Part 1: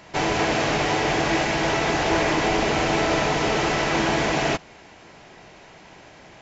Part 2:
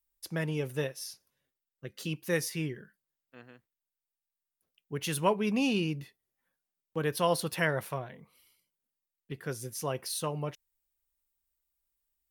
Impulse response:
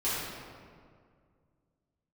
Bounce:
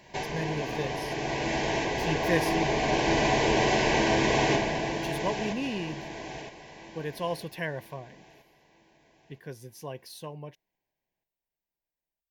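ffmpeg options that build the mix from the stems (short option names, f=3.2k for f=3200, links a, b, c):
-filter_complex "[0:a]acompressor=threshold=-23dB:ratio=6,volume=-9.5dB,asplit=3[a][b][c];[b]volume=-7dB[d];[c]volume=-5dB[e];[1:a]equalizer=f=9k:w=0.98:g=-9,volume=-2dB,afade=t=out:st=2.28:d=0.53:silence=0.354813,asplit=2[f][g];[g]apad=whole_len=282978[h];[a][h]sidechaincompress=threshold=-54dB:ratio=8:attack=16:release=366[i];[2:a]atrim=start_sample=2205[j];[d][j]afir=irnorm=-1:irlink=0[k];[e]aecho=0:1:964|1928|2892|3856|4820|5784:1|0.42|0.176|0.0741|0.0311|0.0131[l];[i][f][k][l]amix=inputs=4:normalize=0,dynaudnorm=f=200:g=21:m=7dB,asuperstop=centerf=1300:order=4:qfactor=3.2"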